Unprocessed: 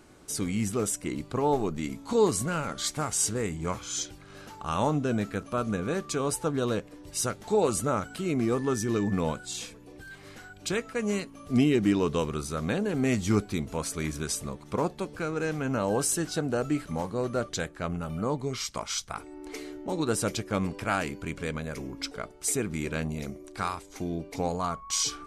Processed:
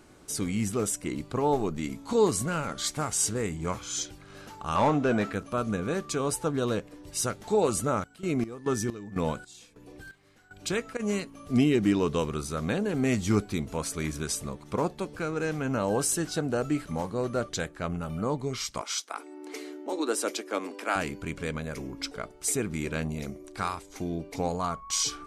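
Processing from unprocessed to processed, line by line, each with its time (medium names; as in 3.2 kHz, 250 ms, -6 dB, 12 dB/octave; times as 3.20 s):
4.75–5.33 s: overdrive pedal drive 17 dB, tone 1.8 kHz, clips at -13.5 dBFS
7.90–10.99 s: square tremolo 2.8 Hz -> 1 Hz
18.81–20.96 s: steep high-pass 260 Hz 48 dB/octave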